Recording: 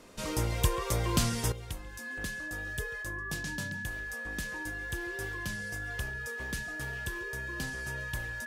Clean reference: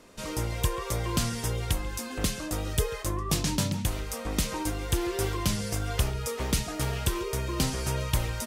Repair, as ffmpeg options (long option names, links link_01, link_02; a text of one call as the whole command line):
ffmpeg -i in.wav -af "bandreject=frequency=1700:width=30,asetnsamples=nb_out_samples=441:pad=0,asendcmd='1.52 volume volume 11.5dB',volume=0dB" out.wav